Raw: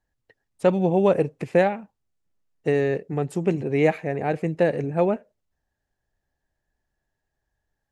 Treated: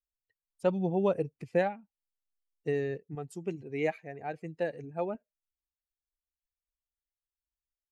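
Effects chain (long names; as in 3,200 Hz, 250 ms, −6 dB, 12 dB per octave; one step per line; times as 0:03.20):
spectral dynamics exaggerated over time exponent 1.5
0:03.15–0:05.15: low-shelf EQ 300 Hz −8.5 dB
level −7 dB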